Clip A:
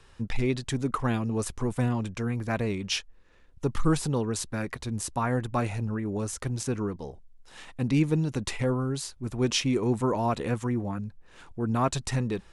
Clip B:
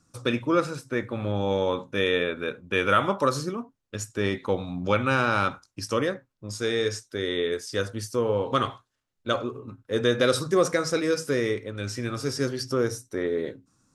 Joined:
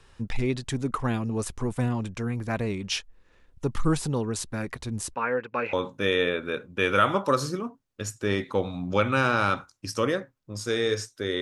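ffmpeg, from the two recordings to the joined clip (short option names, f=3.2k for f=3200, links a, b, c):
-filter_complex "[0:a]asplit=3[a][b][c];[a]afade=t=out:st=5.13:d=0.02[d];[b]highpass=320,equalizer=f=330:t=q:w=4:g=-6,equalizer=f=480:t=q:w=4:g=9,equalizer=f=700:t=q:w=4:g=-9,equalizer=f=1.5k:t=q:w=4:g=7,equalizer=f=2.5k:t=q:w=4:g=10,equalizer=f=3.6k:t=q:w=4:g=-9,lowpass=f=4k:w=0.5412,lowpass=f=4k:w=1.3066,afade=t=in:st=5.13:d=0.02,afade=t=out:st=5.73:d=0.02[e];[c]afade=t=in:st=5.73:d=0.02[f];[d][e][f]amix=inputs=3:normalize=0,apad=whole_dur=11.41,atrim=end=11.41,atrim=end=5.732[g];[1:a]atrim=start=1.668:end=7.35[h];[g][h]acrossfade=d=0.004:c1=hsin:c2=hsin"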